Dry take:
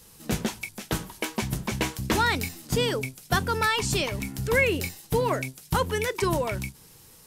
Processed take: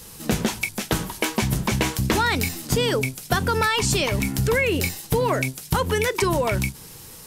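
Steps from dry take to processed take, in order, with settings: in parallel at +1 dB: limiter -19.5 dBFS, peak gain reduction 8 dB; on the sum: compressor, threshold -21 dBFS, peak gain reduction 7.5 dB; gain +3.5 dB

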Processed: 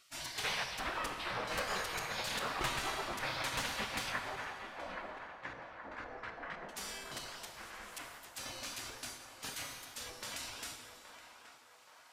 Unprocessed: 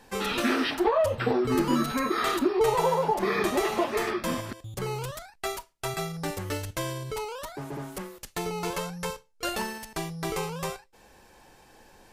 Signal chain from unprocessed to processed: high shelf 8300 Hz -8.5 dB; spectral gate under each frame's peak -20 dB weak; 4.12–6.69 LFO low-pass square 3.9 Hz 670–1700 Hz; narrowing echo 0.824 s, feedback 64%, band-pass 1000 Hz, level -7.5 dB; plate-style reverb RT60 2.5 s, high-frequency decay 0.85×, DRR 5 dB; Doppler distortion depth 0.42 ms

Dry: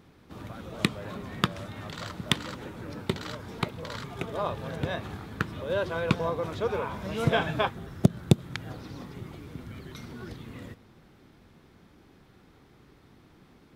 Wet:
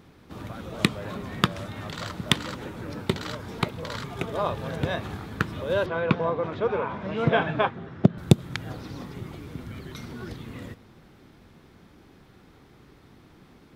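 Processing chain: 5.86–8.18 BPF 120–2700 Hz; gain +3.5 dB

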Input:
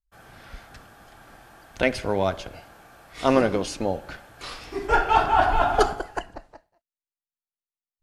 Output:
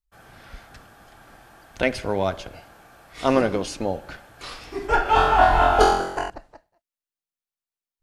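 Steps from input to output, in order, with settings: 5.03–6.3 flutter echo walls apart 3.9 m, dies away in 0.7 s

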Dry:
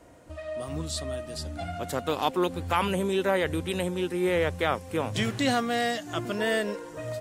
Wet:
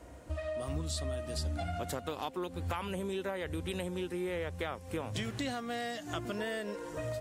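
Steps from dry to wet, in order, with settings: compressor 6:1, threshold -34 dBFS, peak gain reduction 14 dB; bell 63 Hz +14.5 dB 0.43 oct

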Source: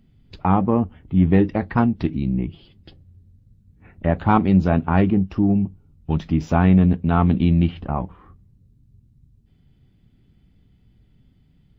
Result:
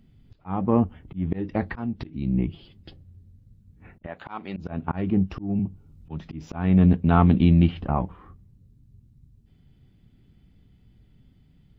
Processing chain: 4.06–4.57 HPF 1100 Hz 6 dB/oct; auto swell 0.348 s; 5.59–6.23 three-band squash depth 40%

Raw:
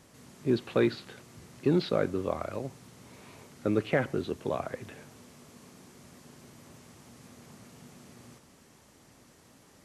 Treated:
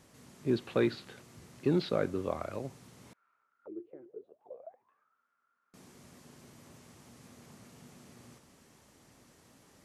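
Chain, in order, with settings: 3.13–5.74 auto-wah 350–1500 Hz, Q 22, down, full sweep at -24 dBFS; gain -3 dB

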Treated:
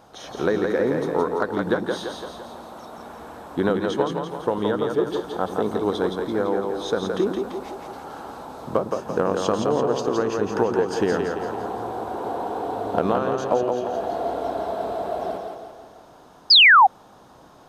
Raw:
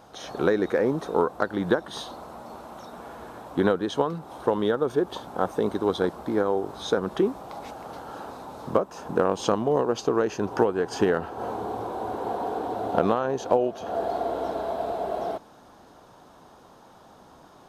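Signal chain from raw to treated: split-band echo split 310 Hz, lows 0.105 s, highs 0.169 s, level -4 dB; painted sound fall, 16.5–16.87, 720–5200 Hz -11 dBFS

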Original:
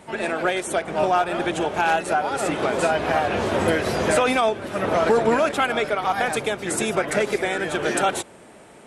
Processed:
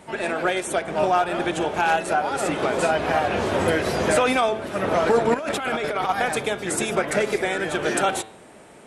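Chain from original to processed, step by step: de-hum 109.9 Hz, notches 39; 5.34–6.09 negative-ratio compressor -26 dBFS, ratio -1

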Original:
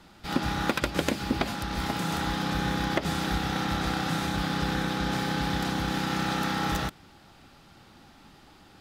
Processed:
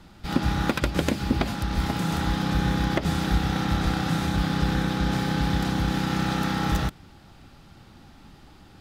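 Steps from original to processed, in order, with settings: low shelf 190 Hz +10 dB

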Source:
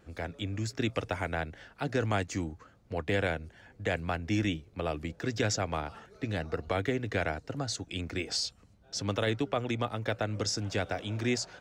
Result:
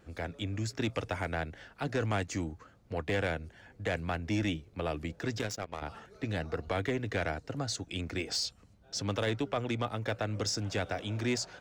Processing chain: 5.39–5.82 power-law curve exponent 2; soft clip -22.5 dBFS, distortion -17 dB

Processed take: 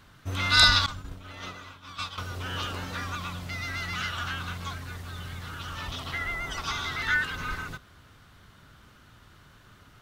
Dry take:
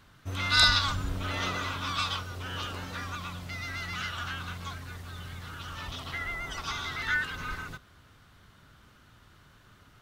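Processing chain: 0.86–2.18 expander -22 dBFS; gain +3 dB

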